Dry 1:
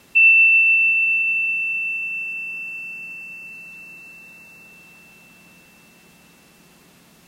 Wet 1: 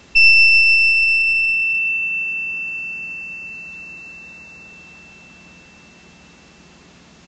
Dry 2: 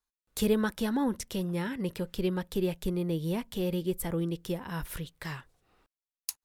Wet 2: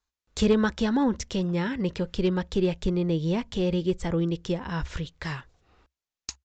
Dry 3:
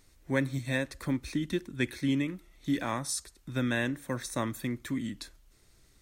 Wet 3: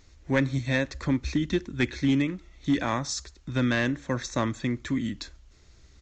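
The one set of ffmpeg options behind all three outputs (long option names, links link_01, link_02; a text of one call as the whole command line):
ffmpeg -i in.wav -af "aeval=exprs='clip(val(0),-1,0.0841)':channel_layout=same,equalizer=frequency=66:width_type=o:width=0.47:gain=12.5,aresample=16000,aresample=44100,volume=5dB" out.wav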